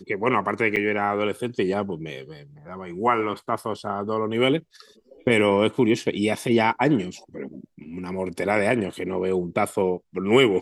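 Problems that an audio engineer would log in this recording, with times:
0.76–0.77 s: dropout 6.5 ms

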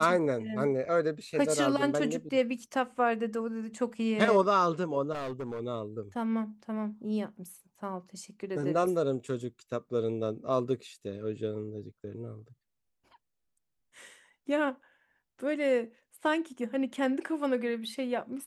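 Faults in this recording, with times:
5.12–5.61 s: clipped -32.5 dBFS

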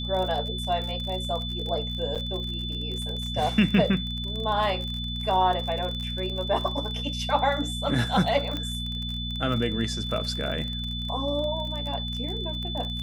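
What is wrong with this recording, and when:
crackle 34 per s -31 dBFS
hum 60 Hz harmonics 4 -33 dBFS
whine 3.5 kHz -33 dBFS
2.15–2.16 s: dropout 7 ms
8.57 s: pop -18 dBFS

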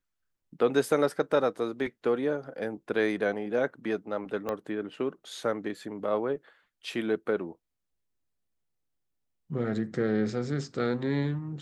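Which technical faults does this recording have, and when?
4.49 s: pop -19 dBFS

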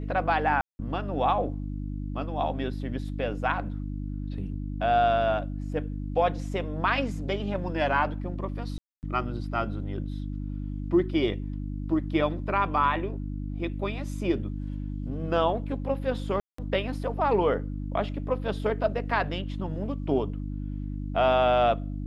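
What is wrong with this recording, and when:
hum 50 Hz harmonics 6 -33 dBFS
0.61–0.79 s: dropout 180 ms
8.78–9.03 s: dropout 249 ms
16.40–16.58 s: dropout 184 ms

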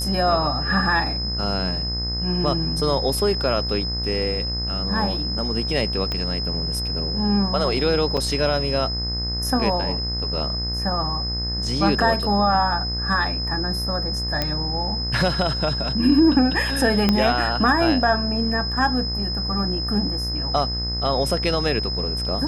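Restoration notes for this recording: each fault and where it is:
buzz 60 Hz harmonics 35 -28 dBFS
whine 5.1 kHz -26 dBFS
6.12 s: pop -13 dBFS
8.17 s: dropout 4.9 ms
14.42 s: pop -8 dBFS
17.09 s: pop -5 dBFS

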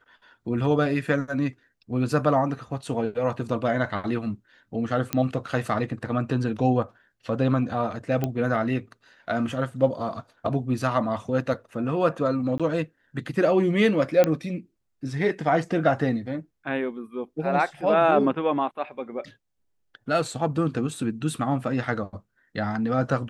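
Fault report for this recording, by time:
5.13 s: pop -9 dBFS
8.24 s: pop -13 dBFS
12.58–12.60 s: dropout 16 ms
14.24 s: pop -8 dBFS

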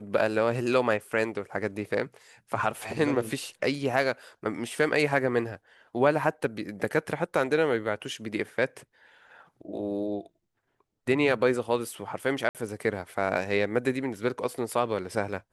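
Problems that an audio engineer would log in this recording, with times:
12.49–12.55 s: dropout 58 ms

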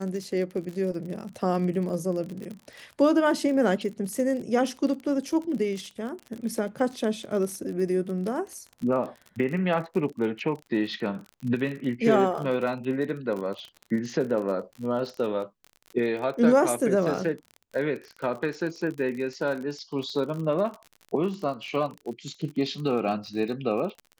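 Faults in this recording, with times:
crackle 40 per s -33 dBFS

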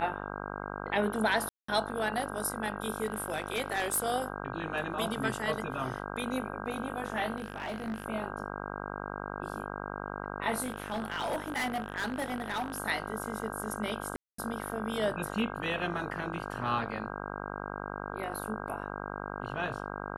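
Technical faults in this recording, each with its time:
buzz 50 Hz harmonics 32 -39 dBFS
1.49–1.68 s: dropout 194 ms
3.02–4.04 s: clipped -25 dBFS
7.38–8.04 s: clipped -31.5 dBFS
10.61–12.78 s: clipped -28.5 dBFS
14.16–14.38 s: dropout 224 ms

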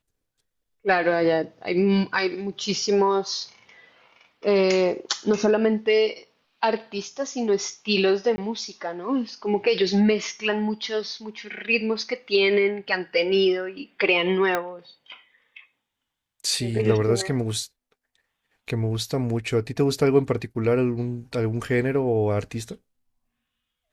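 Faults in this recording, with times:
8.36–8.38 s: dropout 20 ms
14.55 s: pop -10 dBFS

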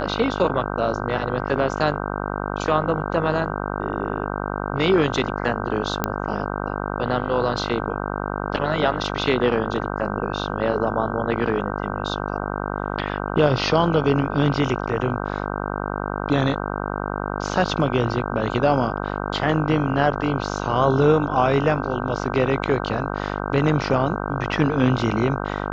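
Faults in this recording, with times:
buzz 50 Hz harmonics 31 -27 dBFS
6.04 s: pop -6 dBFS

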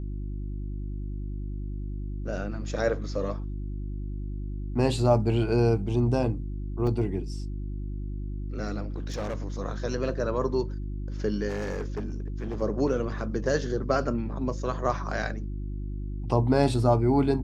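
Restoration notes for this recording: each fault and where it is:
hum 50 Hz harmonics 7 -33 dBFS
6.87 s: dropout 2.6 ms
8.96–9.42 s: clipped -27.5 dBFS
11.48–12.62 s: clipped -27.5 dBFS

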